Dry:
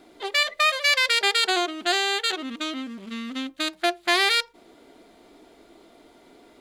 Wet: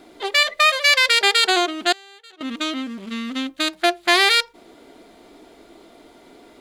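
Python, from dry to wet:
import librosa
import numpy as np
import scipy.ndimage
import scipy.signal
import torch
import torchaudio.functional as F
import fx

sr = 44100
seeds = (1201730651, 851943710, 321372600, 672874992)

y = fx.gate_flip(x, sr, shuts_db=-19.0, range_db=-26, at=(1.92, 2.41))
y = y * librosa.db_to_amplitude(5.0)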